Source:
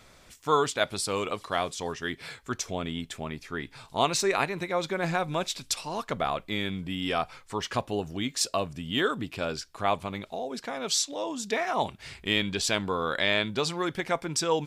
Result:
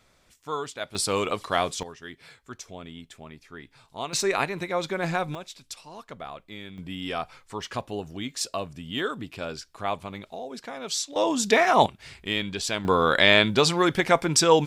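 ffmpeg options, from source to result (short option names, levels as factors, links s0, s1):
-af "asetnsamples=n=441:p=0,asendcmd='0.95 volume volume 4dB;1.83 volume volume -8.5dB;4.13 volume volume 1dB;5.35 volume volume -10dB;6.78 volume volume -2.5dB;11.16 volume volume 9dB;11.86 volume volume -1.5dB;12.85 volume volume 8dB',volume=0.422"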